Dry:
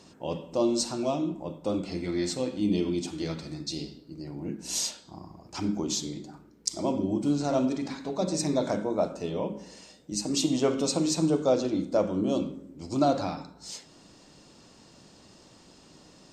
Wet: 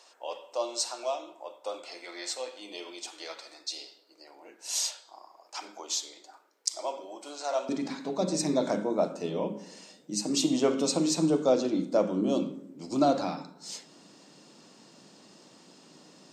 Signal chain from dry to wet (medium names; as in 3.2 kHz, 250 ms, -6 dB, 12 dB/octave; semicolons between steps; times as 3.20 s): high-pass 570 Hz 24 dB/octave, from 7.69 s 160 Hz